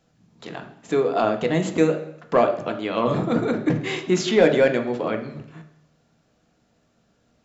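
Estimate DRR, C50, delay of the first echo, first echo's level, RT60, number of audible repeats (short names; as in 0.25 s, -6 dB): 4.5 dB, 10.0 dB, none, none, 0.70 s, none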